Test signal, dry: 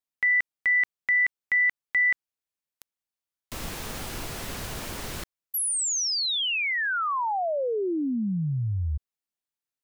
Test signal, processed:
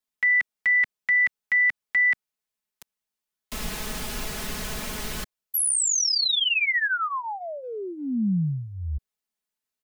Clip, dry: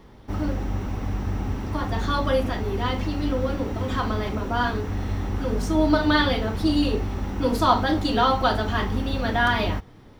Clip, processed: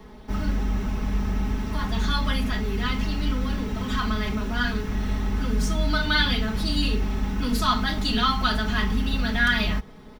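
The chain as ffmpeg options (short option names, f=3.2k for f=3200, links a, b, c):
-filter_complex "[0:a]aecho=1:1:4.7:0.78,acrossover=split=230|1300[a][b][c];[b]acompressor=threshold=-36dB:ratio=10:attack=0.45:release=105:knee=6:detection=peak[d];[a][d][c]amix=inputs=3:normalize=0,volume=1.5dB"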